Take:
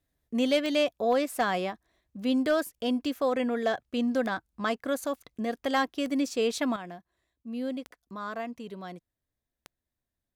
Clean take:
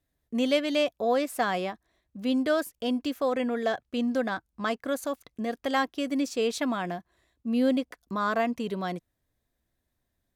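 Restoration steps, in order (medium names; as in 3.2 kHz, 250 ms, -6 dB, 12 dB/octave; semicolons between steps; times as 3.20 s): clip repair -17.5 dBFS; de-click; trim 0 dB, from 6.76 s +9 dB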